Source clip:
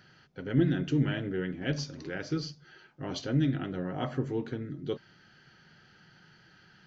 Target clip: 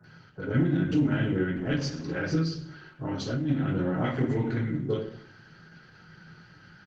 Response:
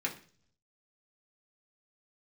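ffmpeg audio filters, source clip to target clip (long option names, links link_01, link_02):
-filter_complex "[0:a]asplit=3[link_01][link_02][link_03];[link_01]afade=type=out:start_time=3.99:duration=0.02[link_04];[link_02]equalizer=frequency=2000:width=4.4:gain=12.5,afade=type=in:start_time=3.99:duration=0.02,afade=type=out:start_time=4.66:duration=0.02[link_05];[link_03]afade=type=in:start_time=4.66:duration=0.02[link_06];[link_04][link_05][link_06]amix=inputs=3:normalize=0[link_07];[1:a]atrim=start_sample=2205,asetrate=26019,aresample=44100[link_08];[link_07][link_08]afir=irnorm=-1:irlink=0,asoftclip=type=tanh:threshold=-9dB,asettb=1/sr,asplit=3[link_09][link_10][link_11];[link_09]atrim=end=1.344[link_12];[link_10]atrim=start=1.34:end=2.11,asetpts=PTS-STARTPTS,afade=type=in:duration=0.004:curve=qsin,afade=type=out:start_time=0.766:duration=0.004:curve=qsin,bandreject=frequency=50:width_type=h:width=6,bandreject=frequency=100:width_type=h:width=6,bandreject=frequency=150:width_type=h:width=6[link_13];[link_11]atrim=start=2.106[link_14];[link_12][link_13]acrossfade=duration=0.004:curve1=hsin:curve2=qsin[link_15];[link_15][link_14]acrossfade=duration=0.004:curve1=qsin:curve2=hsin,acrossover=split=130|3000[link_16][link_17][link_18];[link_16]acompressor=threshold=-33dB:ratio=3[link_19];[link_19][link_17][link_18]amix=inputs=3:normalize=0,alimiter=limit=-15.5dB:level=0:latency=1:release=205,acrossover=split=1100[link_20][link_21];[link_21]adelay=40[link_22];[link_20][link_22]amix=inputs=2:normalize=0,asplit=3[link_23][link_24][link_25];[link_23]afade=type=out:start_time=3.03:duration=0.02[link_26];[link_24]acompressor=threshold=-28dB:ratio=3,afade=type=in:start_time=3.03:duration=0.02,afade=type=out:start_time=3.48:duration=0.02[link_27];[link_25]afade=type=in:start_time=3.48:duration=0.02[link_28];[link_26][link_27][link_28]amix=inputs=3:normalize=0" -ar 48000 -c:a libopus -b:a 16k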